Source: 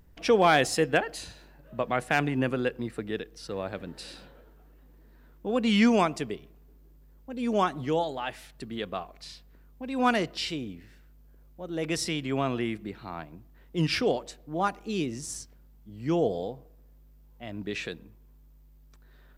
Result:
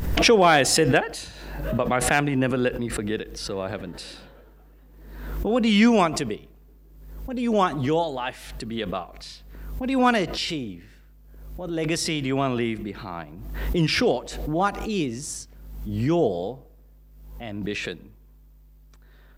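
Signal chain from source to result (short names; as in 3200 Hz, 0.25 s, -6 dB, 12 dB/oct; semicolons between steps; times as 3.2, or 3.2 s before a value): backwards sustainer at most 48 dB/s; gain +4 dB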